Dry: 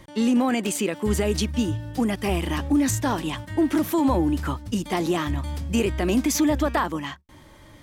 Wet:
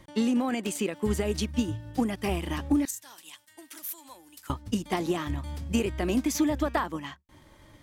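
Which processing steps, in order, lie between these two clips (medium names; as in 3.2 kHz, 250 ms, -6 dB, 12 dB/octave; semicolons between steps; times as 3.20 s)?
2.85–4.50 s: differentiator; transient shaper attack +5 dB, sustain -3 dB; trim -6 dB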